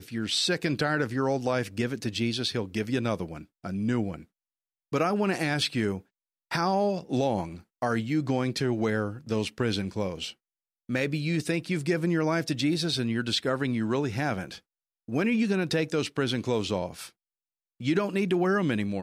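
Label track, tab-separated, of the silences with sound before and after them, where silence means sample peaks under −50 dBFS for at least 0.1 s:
3.450000	3.640000	silence
4.240000	4.920000	silence
6.010000	6.510000	silence
7.620000	7.820000	silence
10.330000	10.890000	silence
14.590000	15.080000	silence
17.100000	17.800000	silence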